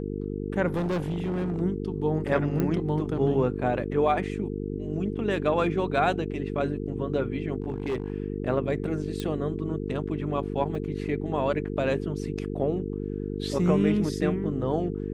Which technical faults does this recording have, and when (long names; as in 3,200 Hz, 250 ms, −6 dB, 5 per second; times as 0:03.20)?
mains buzz 50 Hz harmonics 9 −32 dBFS
0:00.76–0:01.62: clipping −24.5 dBFS
0:02.60: click −15 dBFS
0:07.62–0:08.12: clipping −24 dBFS
0:09.20: click −18 dBFS
0:10.75: drop-out 2.3 ms